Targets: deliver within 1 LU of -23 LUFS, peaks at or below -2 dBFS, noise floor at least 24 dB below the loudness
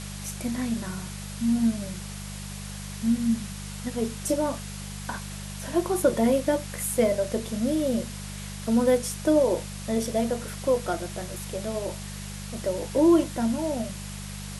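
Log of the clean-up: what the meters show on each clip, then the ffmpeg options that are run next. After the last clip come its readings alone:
hum 50 Hz; highest harmonic 200 Hz; hum level -36 dBFS; noise floor -37 dBFS; noise floor target -52 dBFS; loudness -27.5 LUFS; peak level -10.0 dBFS; loudness target -23.0 LUFS
-> -af "bandreject=f=50:t=h:w=4,bandreject=f=100:t=h:w=4,bandreject=f=150:t=h:w=4,bandreject=f=200:t=h:w=4"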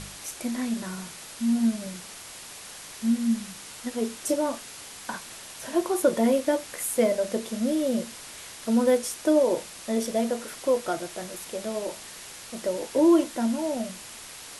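hum not found; noise floor -43 dBFS; noise floor target -51 dBFS
-> -af "afftdn=nr=8:nf=-43"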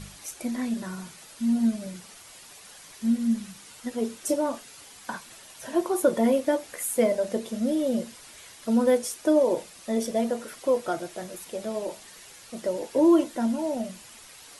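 noise floor -49 dBFS; noise floor target -51 dBFS
-> -af "afftdn=nr=6:nf=-49"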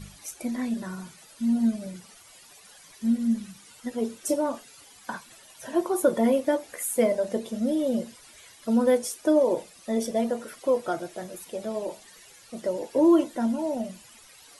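noise floor -52 dBFS; loudness -26.5 LUFS; peak level -10.5 dBFS; loudness target -23.0 LUFS
-> -af "volume=1.5"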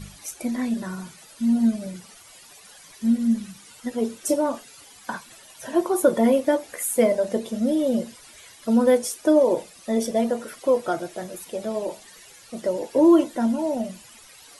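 loudness -23.0 LUFS; peak level -7.0 dBFS; noise floor -49 dBFS

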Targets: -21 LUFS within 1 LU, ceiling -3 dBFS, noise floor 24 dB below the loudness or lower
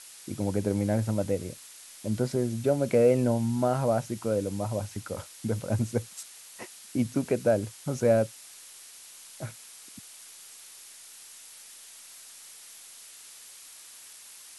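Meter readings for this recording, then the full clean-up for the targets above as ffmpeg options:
noise floor -49 dBFS; noise floor target -52 dBFS; loudness -28.0 LUFS; peak level -11.0 dBFS; loudness target -21.0 LUFS
-> -af "afftdn=nr=6:nf=-49"
-af "volume=2.24"

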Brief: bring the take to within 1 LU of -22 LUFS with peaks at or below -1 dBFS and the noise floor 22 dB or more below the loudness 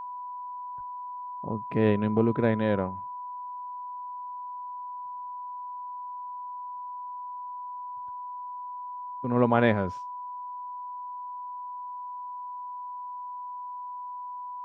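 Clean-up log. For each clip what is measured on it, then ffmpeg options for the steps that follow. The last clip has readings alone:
steady tone 990 Hz; tone level -35 dBFS; loudness -32.0 LUFS; peak level -7.5 dBFS; loudness target -22.0 LUFS
-> -af "bandreject=f=990:w=30"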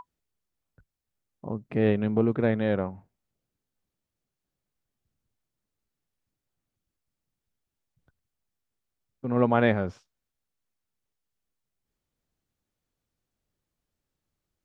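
steady tone not found; loudness -26.0 LUFS; peak level -8.0 dBFS; loudness target -22.0 LUFS
-> -af "volume=1.58"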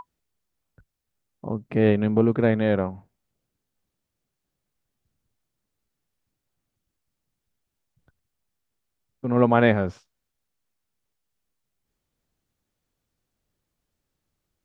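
loudness -22.0 LUFS; peak level -4.0 dBFS; noise floor -82 dBFS

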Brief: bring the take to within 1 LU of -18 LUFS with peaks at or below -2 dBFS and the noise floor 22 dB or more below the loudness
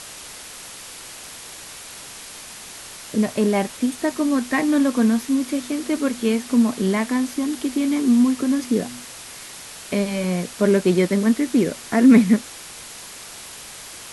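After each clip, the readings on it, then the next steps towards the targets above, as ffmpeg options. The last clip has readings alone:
noise floor -39 dBFS; noise floor target -42 dBFS; loudness -20.0 LUFS; peak level -3.0 dBFS; loudness target -18.0 LUFS
-> -af "afftdn=nr=6:nf=-39"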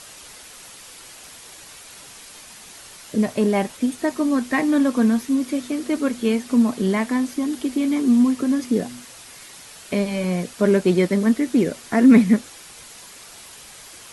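noise floor -43 dBFS; loudness -20.0 LUFS; peak level -3.0 dBFS; loudness target -18.0 LUFS
-> -af "volume=1.26,alimiter=limit=0.794:level=0:latency=1"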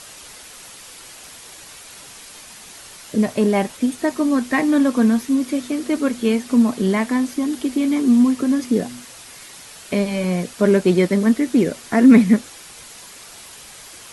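loudness -18.0 LUFS; peak level -2.0 dBFS; noise floor -41 dBFS

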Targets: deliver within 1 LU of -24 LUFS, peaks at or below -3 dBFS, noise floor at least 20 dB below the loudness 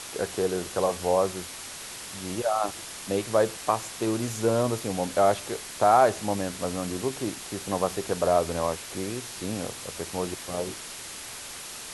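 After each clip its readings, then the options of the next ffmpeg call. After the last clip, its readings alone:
noise floor -40 dBFS; noise floor target -48 dBFS; loudness -28.0 LUFS; peak level -8.0 dBFS; loudness target -24.0 LUFS
-> -af "afftdn=nr=8:nf=-40"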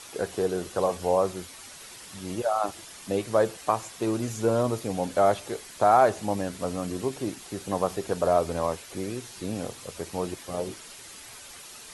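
noise floor -45 dBFS; noise floor target -48 dBFS
-> -af "afftdn=nr=6:nf=-45"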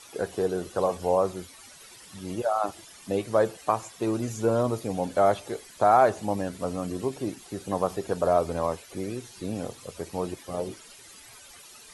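noise floor -49 dBFS; loudness -27.5 LUFS; peak level -8.5 dBFS; loudness target -24.0 LUFS
-> -af "volume=1.5"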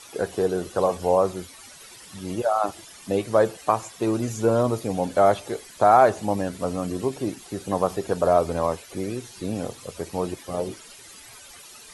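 loudness -24.0 LUFS; peak level -5.0 dBFS; noise floor -46 dBFS

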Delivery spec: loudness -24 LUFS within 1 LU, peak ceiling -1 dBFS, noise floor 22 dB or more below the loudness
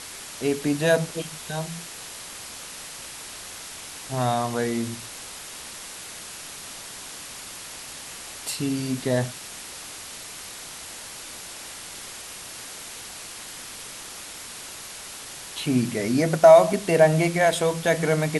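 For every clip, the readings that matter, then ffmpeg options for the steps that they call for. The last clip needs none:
noise floor -39 dBFS; noise floor target -48 dBFS; loudness -26.0 LUFS; peak level -3.0 dBFS; loudness target -24.0 LUFS
-> -af "afftdn=nr=9:nf=-39"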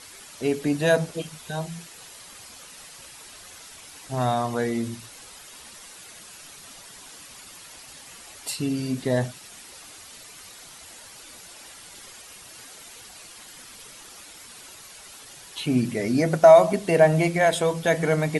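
noise floor -46 dBFS; loudness -22.5 LUFS; peak level -3.0 dBFS; loudness target -24.0 LUFS
-> -af "volume=0.841"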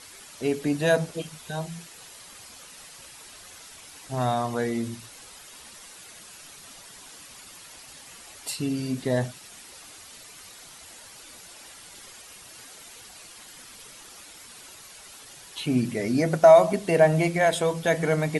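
loudness -24.0 LUFS; peak level -4.5 dBFS; noise floor -47 dBFS

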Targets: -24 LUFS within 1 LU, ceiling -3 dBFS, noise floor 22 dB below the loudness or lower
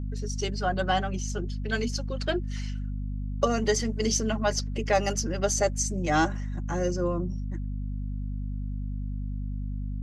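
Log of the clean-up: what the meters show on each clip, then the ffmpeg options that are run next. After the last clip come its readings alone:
hum 50 Hz; highest harmonic 250 Hz; hum level -29 dBFS; loudness -29.0 LUFS; peak level -10.5 dBFS; loudness target -24.0 LUFS
-> -af "bandreject=f=50:t=h:w=4,bandreject=f=100:t=h:w=4,bandreject=f=150:t=h:w=4,bandreject=f=200:t=h:w=4,bandreject=f=250:t=h:w=4"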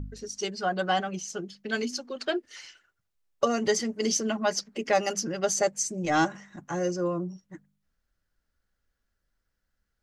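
hum not found; loudness -29.0 LUFS; peak level -11.5 dBFS; loudness target -24.0 LUFS
-> -af "volume=1.78"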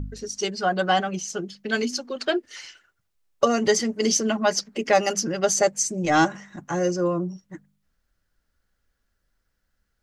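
loudness -24.0 LUFS; peak level -6.5 dBFS; noise floor -75 dBFS

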